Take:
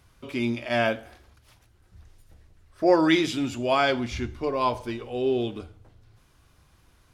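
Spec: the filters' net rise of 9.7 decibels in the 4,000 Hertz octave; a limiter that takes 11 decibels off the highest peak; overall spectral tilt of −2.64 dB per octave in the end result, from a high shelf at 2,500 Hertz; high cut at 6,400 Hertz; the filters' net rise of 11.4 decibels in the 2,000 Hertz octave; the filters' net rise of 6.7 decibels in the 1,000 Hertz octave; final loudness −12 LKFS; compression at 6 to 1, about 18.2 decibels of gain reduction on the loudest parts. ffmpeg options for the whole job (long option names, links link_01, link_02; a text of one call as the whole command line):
ffmpeg -i in.wav -af "lowpass=6400,equalizer=frequency=1000:width_type=o:gain=5,equalizer=frequency=2000:width_type=o:gain=9,highshelf=frequency=2500:gain=6,equalizer=frequency=4000:width_type=o:gain=4,acompressor=threshold=-29dB:ratio=6,volume=24dB,alimiter=limit=-2dB:level=0:latency=1" out.wav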